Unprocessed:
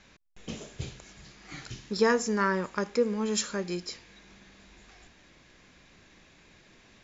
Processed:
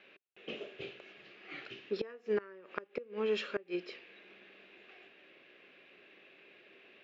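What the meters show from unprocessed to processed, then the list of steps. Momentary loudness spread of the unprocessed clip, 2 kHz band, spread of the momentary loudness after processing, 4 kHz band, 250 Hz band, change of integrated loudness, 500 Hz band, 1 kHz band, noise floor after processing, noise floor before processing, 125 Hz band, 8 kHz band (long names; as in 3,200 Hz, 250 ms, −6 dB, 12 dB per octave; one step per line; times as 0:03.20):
19 LU, −10.0 dB, 22 LU, −8.0 dB, −12.5 dB, −9.5 dB, −7.0 dB, −16.0 dB, −63 dBFS, −59 dBFS, −17.0 dB, can't be measured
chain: loudspeaker in its box 350–3,300 Hz, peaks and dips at 390 Hz +9 dB, 560 Hz +4 dB, 940 Hz −8 dB, 2,700 Hz +9 dB
gate with flip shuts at −19 dBFS, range −24 dB
level −2.5 dB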